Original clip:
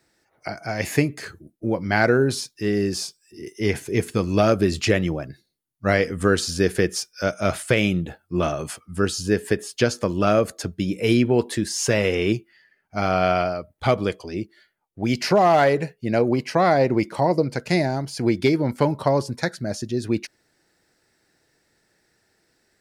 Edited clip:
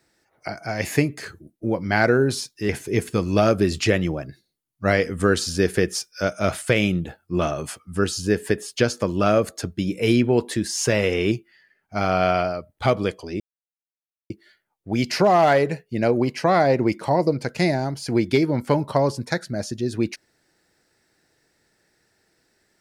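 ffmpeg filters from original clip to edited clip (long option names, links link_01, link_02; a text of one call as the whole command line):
ffmpeg -i in.wav -filter_complex "[0:a]asplit=3[link_01][link_02][link_03];[link_01]atrim=end=2.692[link_04];[link_02]atrim=start=3.698:end=14.41,asetpts=PTS-STARTPTS,afade=type=out:start_time=10.708:duration=0.004:curve=hsin,apad=pad_dur=0.9[link_05];[link_03]atrim=start=14.41,asetpts=PTS-STARTPTS,afade=type=in:duration=0.004:curve=hsin[link_06];[link_05][link_06]concat=n=2:v=0:a=1[link_07];[link_04][link_07]acrossfade=duration=0.004:curve1=hsin:curve2=hsin" out.wav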